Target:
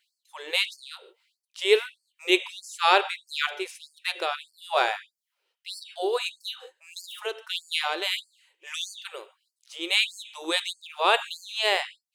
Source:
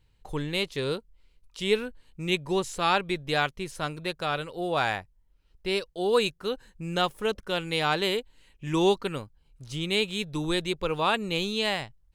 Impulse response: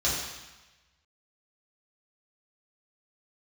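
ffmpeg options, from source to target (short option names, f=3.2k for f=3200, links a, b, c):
-filter_complex "[0:a]tremolo=f=1.7:d=0.64,asplit=2[a][b];[1:a]atrim=start_sample=2205,afade=t=out:st=0.13:d=0.01,atrim=end_sample=6174,asetrate=22491,aresample=44100[c];[b][c]afir=irnorm=-1:irlink=0,volume=-26.5dB[d];[a][d]amix=inputs=2:normalize=0,afftfilt=real='re*gte(b*sr/1024,310*pow(4400/310,0.5+0.5*sin(2*PI*1.6*pts/sr)))':imag='im*gte(b*sr/1024,310*pow(4400/310,0.5+0.5*sin(2*PI*1.6*pts/sr)))':win_size=1024:overlap=0.75,volume=5dB"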